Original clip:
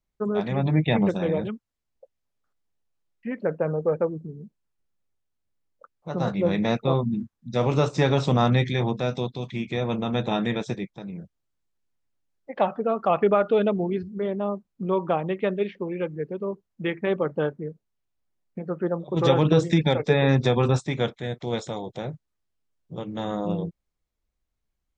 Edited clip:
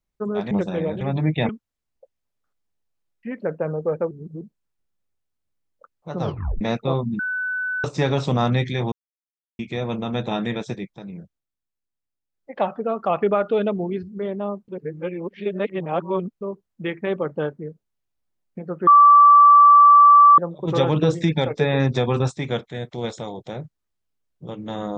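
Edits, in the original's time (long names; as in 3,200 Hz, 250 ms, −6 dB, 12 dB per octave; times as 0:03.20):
0:00.51–0:00.99: move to 0:01.49
0:04.11–0:04.41: reverse
0:06.21: tape stop 0.40 s
0:07.19–0:07.84: beep over 1,500 Hz −22.5 dBFS
0:08.92–0:09.59: silence
0:11.19–0:12.54: duck −9 dB, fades 0.26 s
0:14.68–0:16.41: reverse
0:18.87: insert tone 1,160 Hz −7 dBFS 1.51 s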